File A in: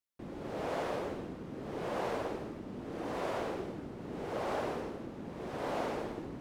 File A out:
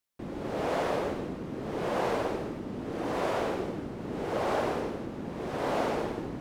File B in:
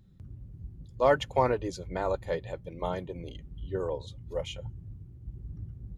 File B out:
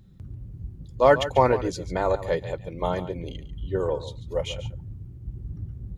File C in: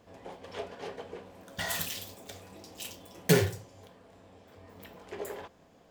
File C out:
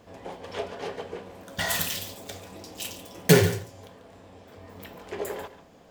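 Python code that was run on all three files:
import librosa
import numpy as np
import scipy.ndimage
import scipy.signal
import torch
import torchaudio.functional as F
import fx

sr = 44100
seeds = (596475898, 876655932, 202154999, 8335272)

y = x + 10.0 ** (-13.5 / 20.0) * np.pad(x, (int(142 * sr / 1000.0), 0))[:len(x)]
y = y * 10.0 ** (6.0 / 20.0)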